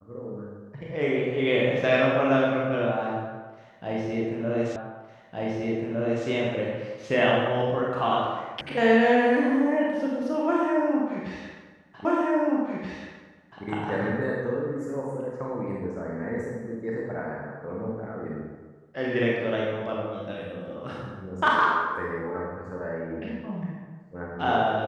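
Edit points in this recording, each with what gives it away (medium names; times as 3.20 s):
4.76 s: repeat of the last 1.51 s
8.61 s: sound stops dead
12.05 s: repeat of the last 1.58 s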